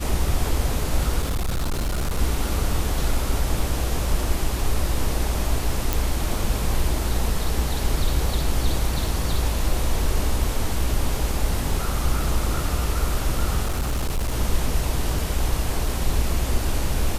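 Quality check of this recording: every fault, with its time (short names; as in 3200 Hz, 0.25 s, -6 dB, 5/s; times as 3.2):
1.21–2.19 clipped -20 dBFS
5.93 pop
13.65–14.34 clipped -19.5 dBFS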